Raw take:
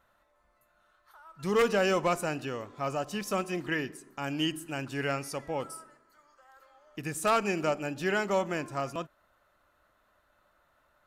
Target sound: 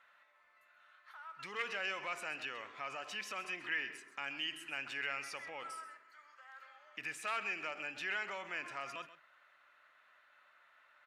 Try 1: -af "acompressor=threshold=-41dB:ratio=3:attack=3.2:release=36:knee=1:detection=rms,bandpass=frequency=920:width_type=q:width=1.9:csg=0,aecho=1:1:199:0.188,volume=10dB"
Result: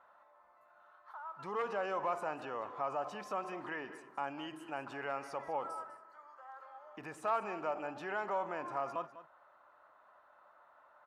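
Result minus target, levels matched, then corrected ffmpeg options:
echo 68 ms late; 2,000 Hz band −7.5 dB
-af "acompressor=threshold=-41dB:ratio=3:attack=3.2:release=36:knee=1:detection=rms,bandpass=frequency=2200:width_type=q:width=1.9:csg=0,aecho=1:1:131:0.188,volume=10dB"

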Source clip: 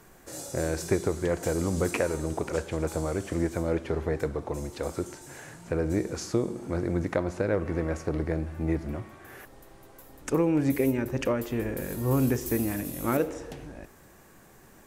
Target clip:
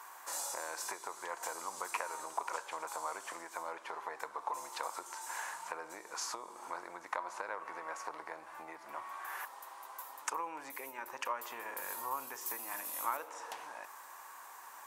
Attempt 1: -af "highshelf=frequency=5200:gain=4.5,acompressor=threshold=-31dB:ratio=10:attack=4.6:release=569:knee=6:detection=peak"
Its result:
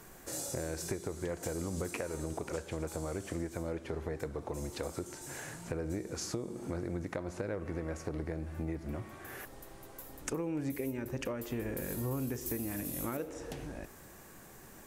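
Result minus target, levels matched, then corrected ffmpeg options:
1,000 Hz band −12.5 dB
-af "highshelf=frequency=5200:gain=4.5,acompressor=threshold=-31dB:ratio=10:attack=4.6:release=569:knee=6:detection=peak,highpass=frequency=980:width_type=q:width=5.3"

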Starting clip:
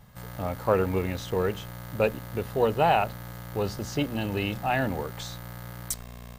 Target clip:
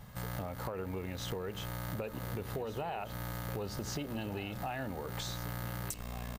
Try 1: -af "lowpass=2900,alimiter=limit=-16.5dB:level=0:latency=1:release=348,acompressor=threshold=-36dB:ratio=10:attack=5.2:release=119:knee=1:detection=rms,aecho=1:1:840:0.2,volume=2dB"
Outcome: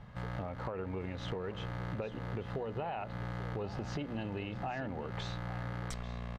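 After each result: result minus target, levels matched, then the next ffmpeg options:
echo 648 ms early; 4,000 Hz band −3.5 dB
-af "lowpass=2900,alimiter=limit=-16.5dB:level=0:latency=1:release=348,acompressor=threshold=-36dB:ratio=10:attack=5.2:release=119:knee=1:detection=rms,aecho=1:1:1488:0.2,volume=2dB"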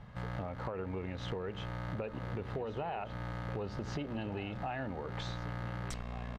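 4,000 Hz band −3.5 dB
-af "alimiter=limit=-16.5dB:level=0:latency=1:release=348,acompressor=threshold=-36dB:ratio=10:attack=5.2:release=119:knee=1:detection=rms,aecho=1:1:1488:0.2,volume=2dB"

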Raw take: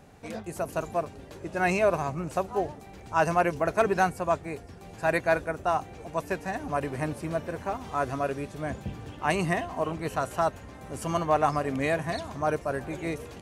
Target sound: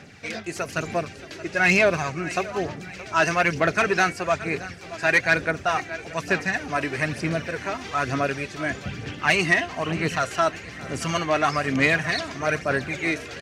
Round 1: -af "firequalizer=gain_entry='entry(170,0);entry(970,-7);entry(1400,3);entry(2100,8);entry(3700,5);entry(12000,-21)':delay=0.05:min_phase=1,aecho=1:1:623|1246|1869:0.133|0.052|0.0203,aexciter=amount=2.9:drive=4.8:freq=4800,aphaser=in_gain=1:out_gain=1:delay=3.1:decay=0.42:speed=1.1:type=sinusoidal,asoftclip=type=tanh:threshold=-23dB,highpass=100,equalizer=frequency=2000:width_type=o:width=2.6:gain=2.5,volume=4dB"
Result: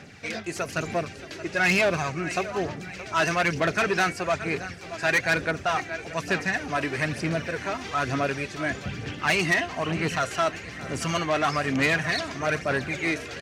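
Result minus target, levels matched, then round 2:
soft clipping: distortion +7 dB
-af "firequalizer=gain_entry='entry(170,0);entry(970,-7);entry(1400,3);entry(2100,8);entry(3700,5);entry(12000,-21)':delay=0.05:min_phase=1,aecho=1:1:623|1246|1869:0.133|0.052|0.0203,aexciter=amount=2.9:drive=4.8:freq=4800,aphaser=in_gain=1:out_gain=1:delay=3.1:decay=0.42:speed=1.1:type=sinusoidal,asoftclip=type=tanh:threshold=-16dB,highpass=100,equalizer=frequency=2000:width_type=o:width=2.6:gain=2.5,volume=4dB"

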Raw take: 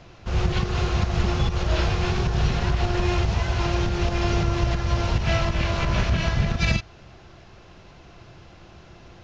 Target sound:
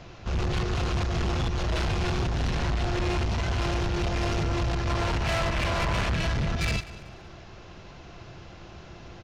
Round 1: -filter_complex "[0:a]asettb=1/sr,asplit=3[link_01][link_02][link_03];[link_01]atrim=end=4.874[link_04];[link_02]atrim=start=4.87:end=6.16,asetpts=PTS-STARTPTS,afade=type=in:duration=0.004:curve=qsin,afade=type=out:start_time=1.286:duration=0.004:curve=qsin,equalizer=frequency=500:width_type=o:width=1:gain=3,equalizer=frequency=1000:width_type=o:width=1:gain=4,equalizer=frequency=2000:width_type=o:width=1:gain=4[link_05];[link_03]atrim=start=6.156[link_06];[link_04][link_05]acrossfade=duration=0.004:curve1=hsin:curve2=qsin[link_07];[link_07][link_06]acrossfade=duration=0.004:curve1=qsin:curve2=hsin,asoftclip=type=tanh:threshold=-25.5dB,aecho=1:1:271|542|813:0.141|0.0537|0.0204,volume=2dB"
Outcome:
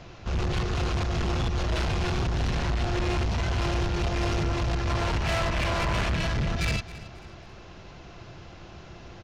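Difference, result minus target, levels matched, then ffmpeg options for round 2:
echo 82 ms late
-filter_complex "[0:a]asettb=1/sr,asplit=3[link_01][link_02][link_03];[link_01]atrim=end=4.874[link_04];[link_02]atrim=start=4.87:end=6.16,asetpts=PTS-STARTPTS,afade=type=in:duration=0.004:curve=qsin,afade=type=out:start_time=1.286:duration=0.004:curve=qsin,equalizer=frequency=500:width_type=o:width=1:gain=3,equalizer=frequency=1000:width_type=o:width=1:gain=4,equalizer=frequency=2000:width_type=o:width=1:gain=4[link_05];[link_03]atrim=start=6.156[link_06];[link_04][link_05]acrossfade=duration=0.004:curve1=hsin:curve2=qsin[link_07];[link_07][link_06]acrossfade=duration=0.004:curve1=qsin:curve2=hsin,asoftclip=type=tanh:threshold=-25.5dB,aecho=1:1:189|378|567:0.141|0.0537|0.0204,volume=2dB"

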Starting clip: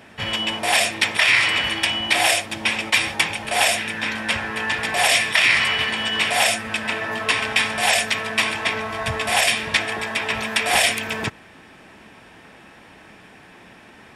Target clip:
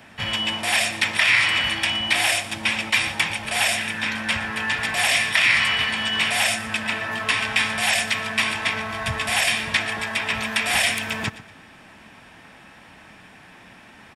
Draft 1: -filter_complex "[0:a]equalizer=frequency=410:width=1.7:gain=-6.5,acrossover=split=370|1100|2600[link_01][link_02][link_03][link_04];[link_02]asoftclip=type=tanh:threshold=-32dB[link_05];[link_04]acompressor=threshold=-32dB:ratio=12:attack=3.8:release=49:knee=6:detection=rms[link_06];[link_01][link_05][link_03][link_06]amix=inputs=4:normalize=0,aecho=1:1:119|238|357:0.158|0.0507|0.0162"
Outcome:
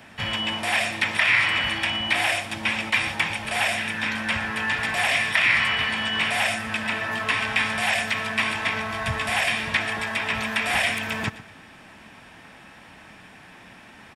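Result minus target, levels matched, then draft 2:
downward compressor: peak gain reduction +10.5 dB
-filter_complex "[0:a]equalizer=frequency=410:width=1.7:gain=-6.5,acrossover=split=370|1100|2600[link_01][link_02][link_03][link_04];[link_02]asoftclip=type=tanh:threshold=-32dB[link_05];[link_04]acompressor=threshold=-20.5dB:ratio=12:attack=3.8:release=49:knee=6:detection=rms[link_06];[link_01][link_05][link_03][link_06]amix=inputs=4:normalize=0,aecho=1:1:119|238|357:0.158|0.0507|0.0162"

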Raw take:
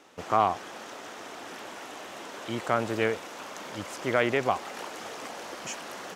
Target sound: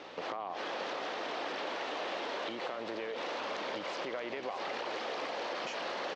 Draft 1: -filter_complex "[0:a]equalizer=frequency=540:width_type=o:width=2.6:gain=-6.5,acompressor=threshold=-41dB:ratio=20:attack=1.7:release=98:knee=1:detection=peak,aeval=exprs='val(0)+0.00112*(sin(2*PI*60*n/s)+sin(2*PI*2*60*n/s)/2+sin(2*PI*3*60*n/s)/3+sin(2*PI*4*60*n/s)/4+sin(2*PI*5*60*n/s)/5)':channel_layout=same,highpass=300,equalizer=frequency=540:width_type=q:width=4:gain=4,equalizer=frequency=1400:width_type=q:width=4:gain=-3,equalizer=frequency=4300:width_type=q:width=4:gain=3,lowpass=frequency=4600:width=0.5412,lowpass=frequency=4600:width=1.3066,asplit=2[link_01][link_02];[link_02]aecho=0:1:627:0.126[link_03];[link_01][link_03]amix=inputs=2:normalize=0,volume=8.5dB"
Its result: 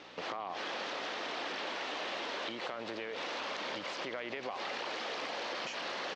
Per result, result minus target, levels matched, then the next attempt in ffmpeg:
echo-to-direct −8 dB; 500 Hz band −2.5 dB
-filter_complex "[0:a]equalizer=frequency=540:width_type=o:width=2.6:gain=-6.5,acompressor=threshold=-41dB:ratio=20:attack=1.7:release=98:knee=1:detection=peak,aeval=exprs='val(0)+0.00112*(sin(2*PI*60*n/s)+sin(2*PI*2*60*n/s)/2+sin(2*PI*3*60*n/s)/3+sin(2*PI*4*60*n/s)/4+sin(2*PI*5*60*n/s)/5)':channel_layout=same,highpass=300,equalizer=frequency=540:width_type=q:width=4:gain=4,equalizer=frequency=1400:width_type=q:width=4:gain=-3,equalizer=frequency=4300:width_type=q:width=4:gain=3,lowpass=frequency=4600:width=0.5412,lowpass=frequency=4600:width=1.3066,asplit=2[link_01][link_02];[link_02]aecho=0:1:627:0.316[link_03];[link_01][link_03]amix=inputs=2:normalize=0,volume=8.5dB"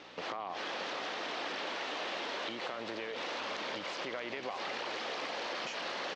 500 Hz band −2.5 dB
-filter_complex "[0:a]acompressor=threshold=-41dB:ratio=20:attack=1.7:release=98:knee=1:detection=peak,aeval=exprs='val(0)+0.00112*(sin(2*PI*60*n/s)+sin(2*PI*2*60*n/s)/2+sin(2*PI*3*60*n/s)/3+sin(2*PI*4*60*n/s)/4+sin(2*PI*5*60*n/s)/5)':channel_layout=same,highpass=300,equalizer=frequency=540:width_type=q:width=4:gain=4,equalizer=frequency=1400:width_type=q:width=4:gain=-3,equalizer=frequency=4300:width_type=q:width=4:gain=3,lowpass=frequency=4600:width=0.5412,lowpass=frequency=4600:width=1.3066,asplit=2[link_01][link_02];[link_02]aecho=0:1:627:0.316[link_03];[link_01][link_03]amix=inputs=2:normalize=0,volume=8.5dB"

